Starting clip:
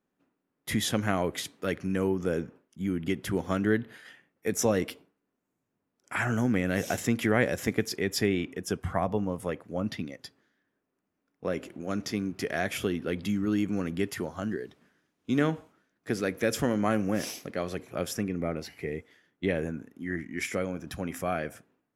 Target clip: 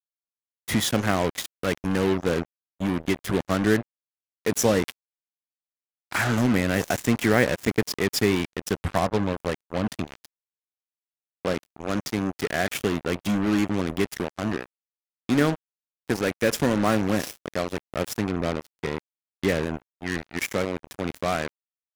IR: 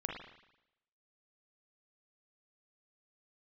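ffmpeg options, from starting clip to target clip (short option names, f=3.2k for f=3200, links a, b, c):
-af "acrusher=bits=4:mix=0:aa=0.5,volume=4.5dB"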